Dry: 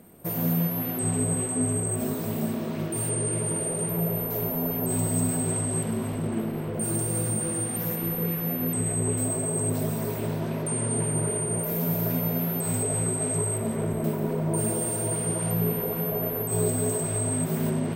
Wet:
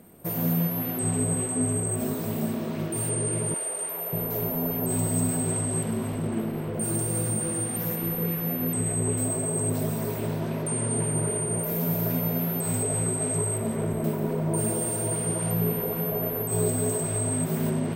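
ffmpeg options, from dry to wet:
ffmpeg -i in.wav -filter_complex "[0:a]asettb=1/sr,asplit=3[link_01][link_02][link_03];[link_01]atrim=end=3.544[link_04];[link_02]atrim=start=3.54:end=4.13,asetpts=PTS-STARTPTS,afade=type=in:duration=0.004:curve=qsin,afade=type=out:start_time=0.586:duration=0.004:curve=qsin,highpass=660[link_05];[link_03]atrim=start=4.126[link_06];[link_04][link_05]acrossfade=duration=0.004:curve1=hsin:curve2=qsin[link_07];[link_07][link_06]acrossfade=duration=0.004:curve1=qsin:curve2=hsin" out.wav

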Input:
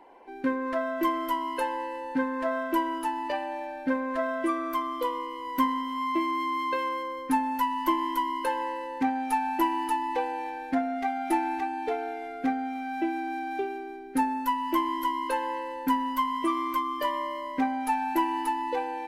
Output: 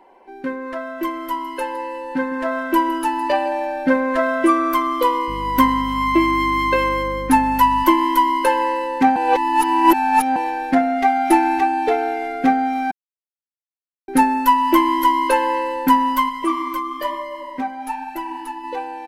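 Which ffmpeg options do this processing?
ffmpeg -i in.wav -filter_complex "[0:a]asettb=1/sr,asplit=3[link_01][link_02][link_03];[link_01]atrim=end=1.154[link_04];[link_02]atrim=start=1.15:end=3.52,asetpts=PTS-STARTPTS,afade=type=in:duration=0.004:curve=qsin,afade=type=out:start_time=2.366:duration=0.004:curve=qsin,aecho=1:1:160:0.168,atrim=end_sample=104517[link_05];[link_03]atrim=start=3.516[link_06];[link_04][link_05]acrossfade=duration=0.004:curve1=hsin:curve2=qsin[link_07];[link_07][link_06]acrossfade=duration=0.004:curve1=qsin:curve2=hsin,asettb=1/sr,asplit=3[link_08][link_09][link_10];[link_08]atrim=end=5.284[link_11];[link_09]atrim=start=5.28:end=7.84,asetpts=PTS-STARTPTS,afade=type=in:duration=0.004:curve=qsin,afade=type=out:start_time=2.556:duration=0.004:curve=qsin,aeval=exprs='val(0)+0.00794*(sin(2*PI*50*n/s)+sin(2*PI*2*50*n/s)/2+sin(2*PI*3*50*n/s)/3+sin(2*PI*4*50*n/s)/4+sin(2*PI*5*50*n/s)/5)':channel_layout=same[link_12];[link_10]atrim=start=7.836[link_13];[link_11][link_12]acrossfade=duration=0.004:curve1=hsin:curve2=qsin[link_14];[link_14][link_13]acrossfade=duration=0.004:curve1=qsin:curve2=hsin,asplit=3[link_15][link_16][link_17];[link_15]afade=type=out:start_time=16.28:duration=0.02[link_18];[link_16]flanger=delay=1.4:depth=8.1:regen=40:speed=1.1:shape=sinusoidal,afade=type=in:start_time=16.28:duration=0.02,afade=type=out:start_time=18.63:duration=0.02[link_19];[link_17]afade=type=in:start_time=18.63:duration=0.02[link_20];[link_18][link_19][link_20]amix=inputs=3:normalize=0,asplit=5[link_21][link_22][link_23][link_24][link_25];[link_21]atrim=end=9.162[link_26];[link_22]atrim=start=9.158:end=10.362,asetpts=PTS-STARTPTS,areverse[link_27];[link_23]atrim=start=10.358:end=12.91,asetpts=PTS-STARTPTS,afade=type=out:start_time=2.548:duration=0.004:curve=hsin[link_28];[link_24]atrim=start=12.91:end=14.08,asetpts=PTS-STARTPTS,volume=0[link_29];[link_25]atrim=start=14.08,asetpts=PTS-STARTPTS,afade=type=in:duration=0.004:curve=hsin[link_30];[link_26][link_27]acrossfade=duration=0.004:curve1=hsin:curve2=hsin[link_31];[link_28][link_29][link_30]concat=n=3:v=0:a=1[link_32];[link_31][link_32]acrossfade=duration=0.004:curve1=hsin:curve2=hsin,aecho=1:1:5.3:0.3,dynaudnorm=framelen=260:gausssize=21:maxgain=10.5dB,volume=2.5dB" out.wav

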